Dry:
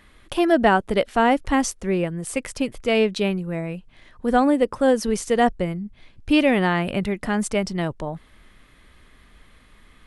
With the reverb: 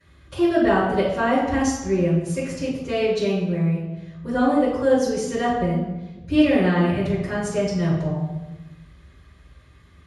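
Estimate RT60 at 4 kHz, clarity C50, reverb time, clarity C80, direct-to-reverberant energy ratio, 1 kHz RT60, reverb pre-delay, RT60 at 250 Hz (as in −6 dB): 0.75 s, 1.0 dB, 1.1 s, 4.0 dB, −19.0 dB, 1.0 s, 3 ms, 1.6 s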